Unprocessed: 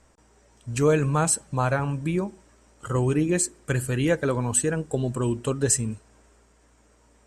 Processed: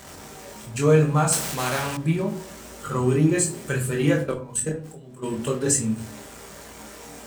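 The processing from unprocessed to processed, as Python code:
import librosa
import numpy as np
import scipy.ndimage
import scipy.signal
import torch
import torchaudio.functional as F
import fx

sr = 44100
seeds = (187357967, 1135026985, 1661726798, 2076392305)

y = x + 0.5 * 10.0 ** (-35.5 / 20.0) * np.sign(x)
y = scipy.signal.sosfilt(scipy.signal.butter(2, 67.0, 'highpass', fs=sr, output='sos'), y)
y = fx.hum_notches(y, sr, base_hz=60, count=7)
y = fx.level_steps(y, sr, step_db=22, at=(4.2, 5.22), fade=0.02)
y = fx.chorus_voices(y, sr, voices=2, hz=0.74, base_ms=23, depth_ms=2.3, mix_pct=40)
y = fx.room_shoebox(y, sr, seeds[0], volume_m3=280.0, walls='furnished', distance_m=1.2)
y = fx.spectral_comp(y, sr, ratio=2.0, at=(1.32, 1.97))
y = y * 10.0 ** (2.0 / 20.0)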